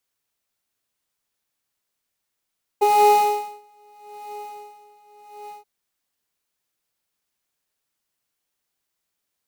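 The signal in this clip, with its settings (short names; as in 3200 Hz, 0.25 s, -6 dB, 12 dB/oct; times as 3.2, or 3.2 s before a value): synth patch with tremolo G#5, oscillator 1 triangle, oscillator 2 triangle, interval -12 st, oscillator 2 level -8.5 dB, noise -18 dB, filter highpass, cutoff 120 Hz, Q 2, filter envelope 2 oct, filter decay 0.07 s, filter sustain 25%, attack 14 ms, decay 0.79 s, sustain -24 dB, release 0.15 s, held 2.68 s, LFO 0.8 Hz, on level 18 dB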